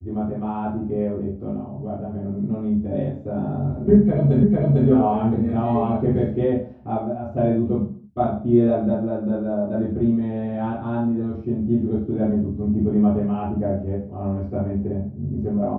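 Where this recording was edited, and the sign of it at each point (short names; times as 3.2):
4.43 repeat of the last 0.45 s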